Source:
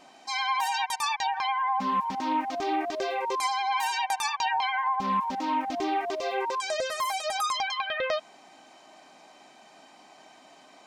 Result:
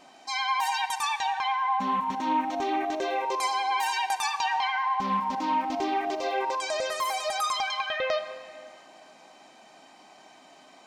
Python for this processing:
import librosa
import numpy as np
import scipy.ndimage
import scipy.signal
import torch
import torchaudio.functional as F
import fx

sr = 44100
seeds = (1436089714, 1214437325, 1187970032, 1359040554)

y = fx.notch(x, sr, hz=4900.0, q=5.6, at=(0.87, 3.27))
y = fx.rev_freeverb(y, sr, rt60_s=2.3, hf_ratio=0.8, predelay_ms=5, drr_db=10.0)